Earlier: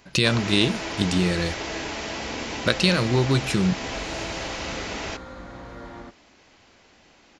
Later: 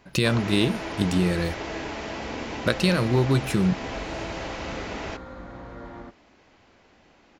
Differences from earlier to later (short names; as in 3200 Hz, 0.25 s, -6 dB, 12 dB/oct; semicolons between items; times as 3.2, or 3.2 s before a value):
speech: remove LPF 5800 Hz 12 dB/oct; master: add high shelf 3100 Hz -11 dB